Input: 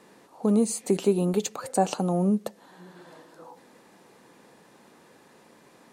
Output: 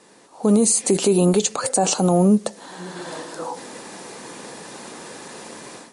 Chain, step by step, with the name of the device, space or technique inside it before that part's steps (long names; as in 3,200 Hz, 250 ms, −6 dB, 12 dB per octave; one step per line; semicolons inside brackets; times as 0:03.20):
bass and treble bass −3 dB, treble +7 dB
low-bitrate web radio (automatic gain control gain up to 15 dB; brickwall limiter −10.5 dBFS, peak gain reduction 9.5 dB; level +2.5 dB; MP3 48 kbit/s 32,000 Hz)